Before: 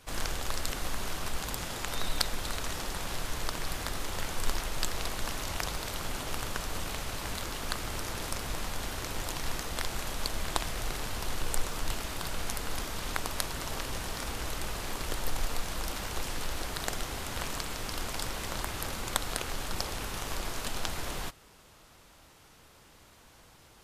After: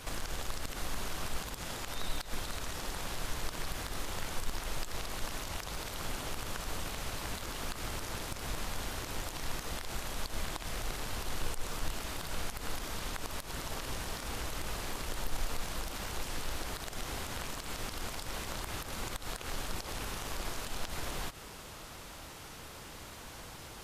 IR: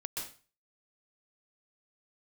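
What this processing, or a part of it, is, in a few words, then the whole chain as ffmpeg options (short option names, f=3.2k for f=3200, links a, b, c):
de-esser from a sidechain: -filter_complex "[0:a]asplit=2[a][b];[b]highpass=f=5.1k:p=1,apad=whole_len=1051071[c];[a][c]sidechaincompress=threshold=-54dB:ratio=5:attack=3.6:release=81,volume=9.5dB"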